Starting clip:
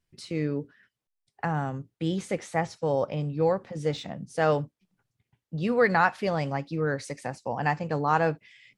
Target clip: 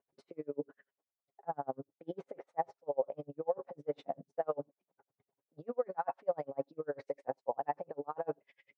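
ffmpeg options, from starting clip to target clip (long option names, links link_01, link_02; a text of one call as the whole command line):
ffmpeg -i in.wav -af "aecho=1:1:7.3:0.4,areverse,acompressor=threshold=-37dB:ratio=6,areverse,bandpass=frequency=600:width_type=q:width=1.1:csg=0,equalizer=frequency=600:width_type=o:width=2.9:gain=13,aeval=exprs='val(0)*pow(10,-38*(0.5-0.5*cos(2*PI*10*n/s))/20)':channel_layout=same,volume=1dB" out.wav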